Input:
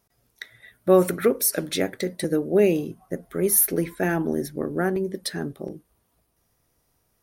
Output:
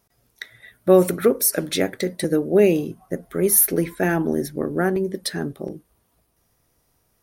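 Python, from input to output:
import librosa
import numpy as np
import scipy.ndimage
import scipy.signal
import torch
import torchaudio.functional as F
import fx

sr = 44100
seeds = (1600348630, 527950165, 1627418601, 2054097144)

y = fx.peak_eq(x, sr, hz=fx.line((0.91, 1100.0), (1.6, 4100.0)), db=-5.5, octaves=0.77, at=(0.91, 1.6), fade=0.02)
y = y * 10.0 ** (3.0 / 20.0)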